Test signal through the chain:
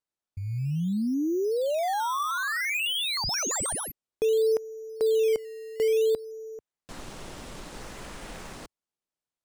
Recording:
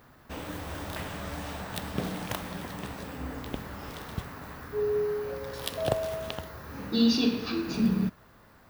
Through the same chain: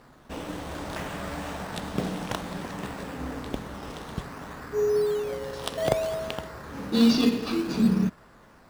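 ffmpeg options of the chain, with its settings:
-filter_complex "[0:a]lowpass=f=10000:w=0.5412,lowpass=f=10000:w=1.3066,equalizer=f=89:w=1.8:g=-8,asplit=2[s0][s1];[s1]acrusher=samples=13:mix=1:aa=0.000001:lfo=1:lforange=13:lforate=0.58,volume=0.631[s2];[s0][s2]amix=inputs=2:normalize=0"

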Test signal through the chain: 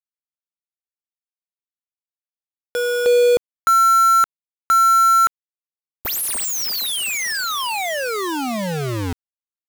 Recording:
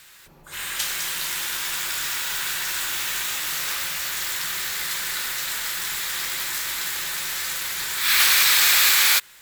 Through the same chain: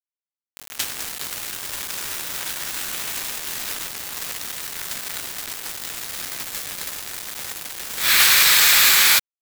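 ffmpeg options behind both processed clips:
-af "aeval=exprs='val(0)*gte(abs(val(0)),0.0841)':c=same,volume=1.41"

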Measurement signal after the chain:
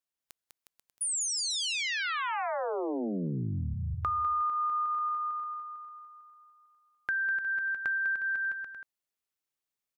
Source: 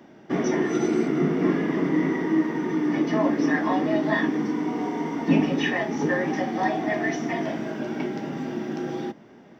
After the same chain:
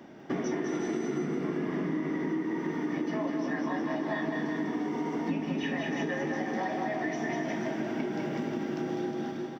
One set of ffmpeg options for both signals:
-filter_complex "[0:a]asplit=2[s0][s1];[s1]aecho=0:1:200|360|488|590.4|672.3:0.631|0.398|0.251|0.158|0.1[s2];[s0][s2]amix=inputs=2:normalize=0,acompressor=threshold=0.0355:ratio=6"

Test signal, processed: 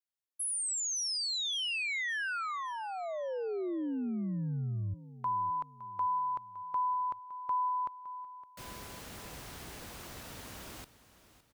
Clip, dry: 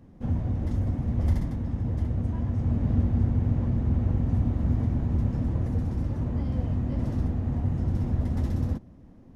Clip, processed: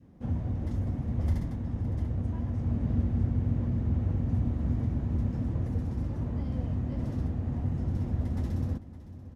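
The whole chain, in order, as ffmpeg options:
-af "highpass=40,adynamicequalizer=threshold=0.00794:dfrequency=880:dqfactor=1.4:tfrequency=880:tqfactor=1.4:attack=5:release=100:ratio=0.375:range=3:mode=cutabove:tftype=bell,aecho=1:1:563|1126|1689|2252:0.158|0.065|0.0266|0.0109,volume=0.668"

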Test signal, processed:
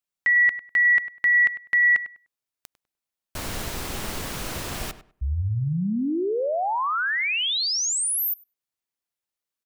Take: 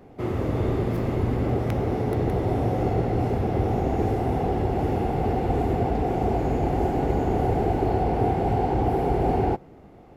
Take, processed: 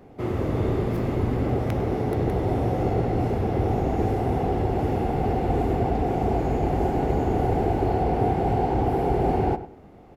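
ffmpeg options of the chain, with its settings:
-filter_complex "[0:a]asplit=2[s0][s1];[s1]adelay=100,lowpass=f=2500:p=1,volume=0.224,asplit=2[s2][s3];[s3]adelay=100,lowpass=f=2500:p=1,volume=0.22,asplit=2[s4][s5];[s5]adelay=100,lowpass=f=2500:p=1,volume=0.22[s6];[s0][s2][s4][s6]amix=inputs=4:normalize=0"

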